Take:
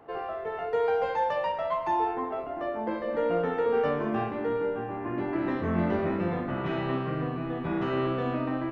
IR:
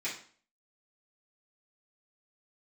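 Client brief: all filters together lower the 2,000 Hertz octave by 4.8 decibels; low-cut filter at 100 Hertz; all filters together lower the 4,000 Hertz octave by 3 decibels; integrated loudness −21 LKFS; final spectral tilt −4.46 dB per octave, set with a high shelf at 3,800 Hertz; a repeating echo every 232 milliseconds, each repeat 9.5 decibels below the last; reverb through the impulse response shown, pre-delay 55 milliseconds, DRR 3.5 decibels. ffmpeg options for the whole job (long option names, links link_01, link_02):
-filter_complex "[0:a]highpass=100,equalizer=frequency=2000:width_type=o:gain=-6.5,highshelf=frequency=3800:gain=4.5,equalizer=frequency=4000:width_type=o:gain=-3.5,aecho=1:1:232|464|696|928:0.335|0.111|0.0365|0.012,asplit=2[link_01][link_02];[1:a]atrim=start_sample=2205,adelay=55[link_03];[link_02][link_03]afir=irnorm=-1:irlink=0,volume=-8dB[link_04];[link_01][link_04]amix=inputs=2:normalize=0,volume=7dB"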